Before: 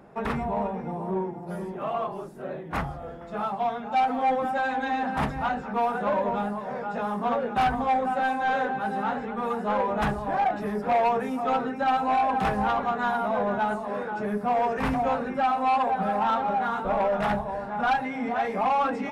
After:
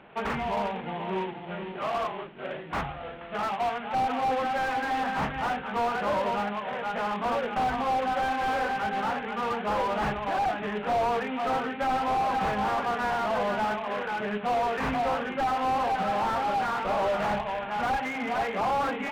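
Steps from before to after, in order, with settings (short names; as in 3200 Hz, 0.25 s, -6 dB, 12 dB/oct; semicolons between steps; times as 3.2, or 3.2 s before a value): CVSD 16 kbps; tilt shelf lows -5.5 dB, about 770 Hz; slew limiter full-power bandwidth 47 Hz; gain +1 dB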